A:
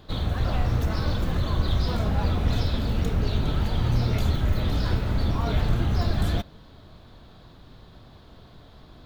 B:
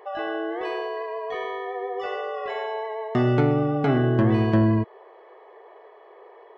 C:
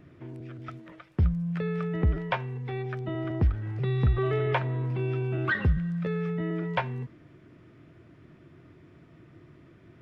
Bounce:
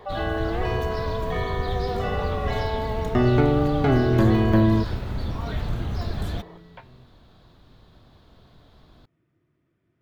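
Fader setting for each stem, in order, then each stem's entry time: -4.5 dB, +1.0 dB, -18.0 dB; 0.00 s, 0.00 s, 0.00 s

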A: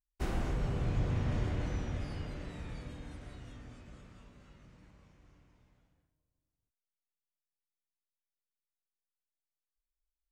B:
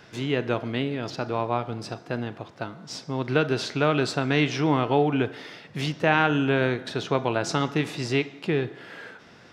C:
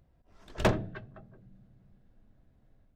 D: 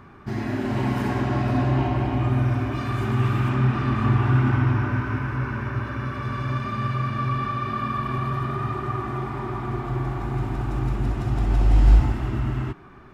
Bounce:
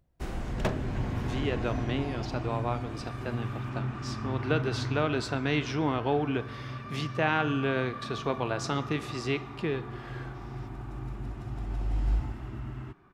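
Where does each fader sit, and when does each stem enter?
-1.0 dB, -6.0 dB, -5.0 dB, -13.0 dB; 0.00 s, 1.15 s, 0.00 s, 0.20 s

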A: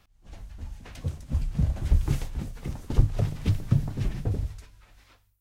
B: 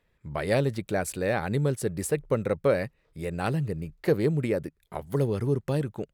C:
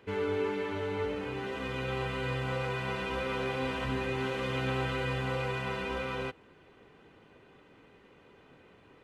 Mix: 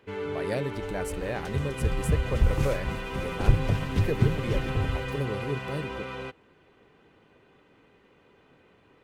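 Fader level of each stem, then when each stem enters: -0.5 dB, -6.5 dB, -1.5 dB; 0.50 s, 0.00 s, 0.00 s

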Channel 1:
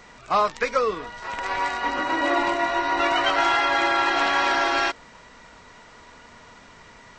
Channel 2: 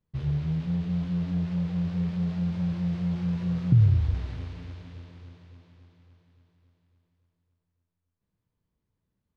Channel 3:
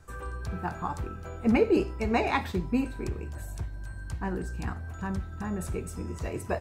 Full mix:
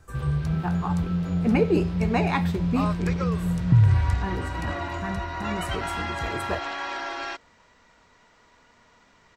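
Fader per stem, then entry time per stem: -10.5 dB, +2.0 dB, +1.0 dB; 2.45 s, 0.00 s, 0.00 s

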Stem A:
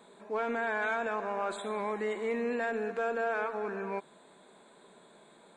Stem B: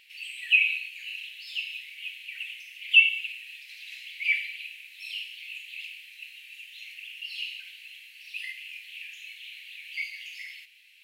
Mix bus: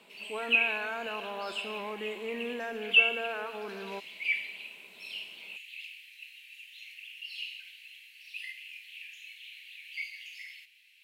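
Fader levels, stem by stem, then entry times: -4.5 dB, -4.5 dB; 0.00 s, 0.00 s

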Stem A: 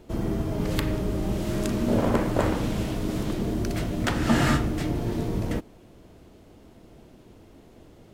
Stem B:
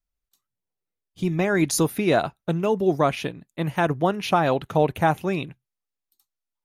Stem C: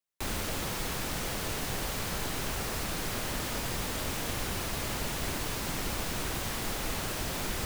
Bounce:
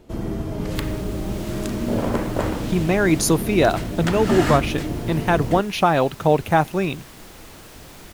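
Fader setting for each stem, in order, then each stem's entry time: +0.5 dB, +3.0 dB, -9.0 dB; 0.00 s, 1.50 s, 0.55 s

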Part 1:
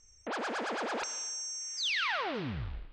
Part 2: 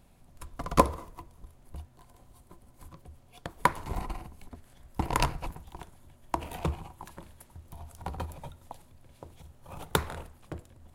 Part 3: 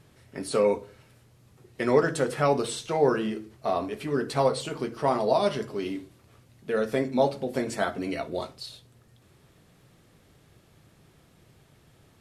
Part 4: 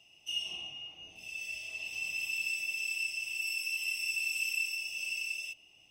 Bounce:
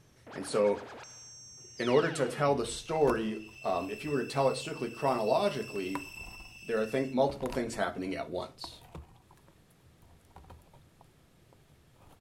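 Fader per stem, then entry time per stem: -12.0 dB, -16.0 dB, -4.5 dB, -13.0 dB; 0.00 s, 2.30 s, 0.00 s, 1.60 s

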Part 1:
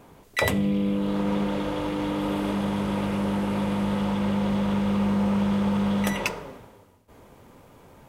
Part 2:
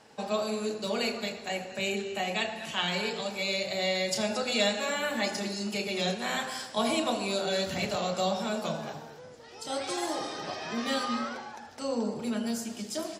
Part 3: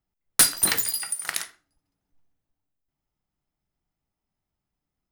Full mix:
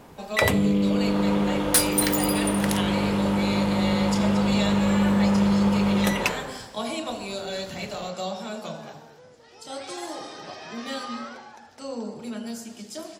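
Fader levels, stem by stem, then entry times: +2.5 dB, -2.5 dB, -3.0 dB; 0.00 s, 0.00 s, 1.35 s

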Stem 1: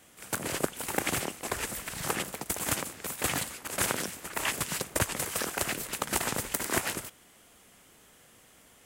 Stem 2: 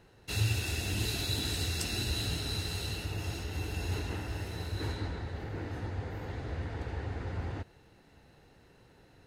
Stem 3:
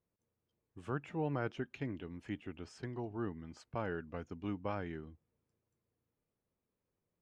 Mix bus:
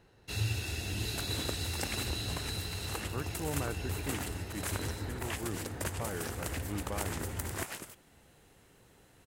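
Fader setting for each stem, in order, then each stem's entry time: -9.5 dB, -3.0 dB, -1.0 dB; 0.85 s, 0.00 s, 2.25 s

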